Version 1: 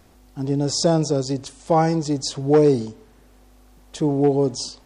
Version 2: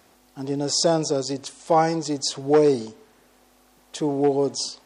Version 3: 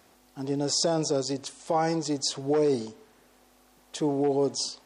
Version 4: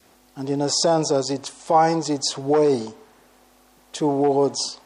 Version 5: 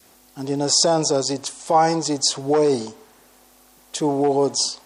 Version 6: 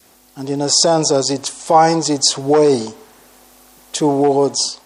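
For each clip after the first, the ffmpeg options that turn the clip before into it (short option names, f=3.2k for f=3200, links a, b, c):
-af "highpass=f=450:p=1,volume=1.5dB"
-af "alimiter=limit=-14dB:level=0:latency=1:release=22,volume=-2.5dB"
-af "adynamicequalizer=threshold=0.00891:dfrequency=910:dqfactor=1.3:tfrequency=910:tqfactor=1.3:attack=5:release=100:ratio=0.375:range=3.5:mode=boostabove:tftype=bell,volume=4.5dB"
-af "highshelf=f=5.3k:g=9"
-af "dynaudnorm=f=240:g=7:m=4dB,volume=2.5dB"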